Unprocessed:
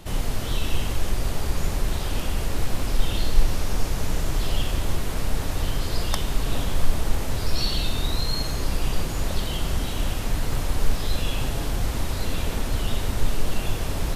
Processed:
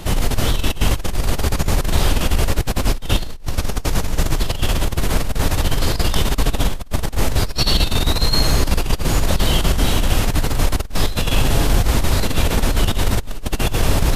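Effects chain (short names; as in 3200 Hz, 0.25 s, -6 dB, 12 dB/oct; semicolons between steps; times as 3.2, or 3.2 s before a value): negative-ratio compressor -23 dBFS, ratio -0.5; gain +8 dB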